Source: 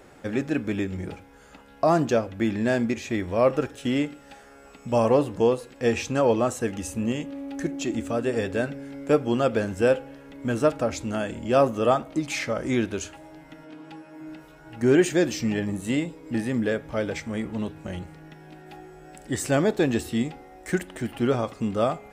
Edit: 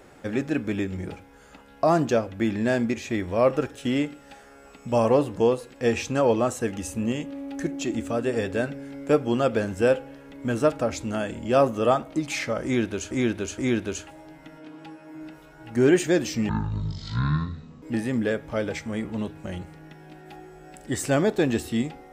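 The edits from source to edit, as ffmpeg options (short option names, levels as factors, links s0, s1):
-filter_complex "[0:a]asplit=5[s0][s1][s2][s3][s4];[s0]atrim=end=13.112[s5];[s1]atrim=start=12.638:end=13.112[s6];[s2]atrim=start=12.638:end=15.554[s7];[s3]atrim=start=15.55:end=16.23,asetpts=PTS-STARTPTS,asetrate=22491,aresample=44100[s8];[s4]atrim=start=16.226[s9];[s5][s6]acrossfade=d=0.004:c1=hsin:c2=hsin[s10];[s10][s7]acrossfade=d=0.004:c1=hsin:c2=hsin[s11];[s11][s8]acrossfade=d=0.004:c1=hsin:c2=hsin[s12];[s12][s9]acrossfade=d=0.004:c1=hsin:c2=hsin"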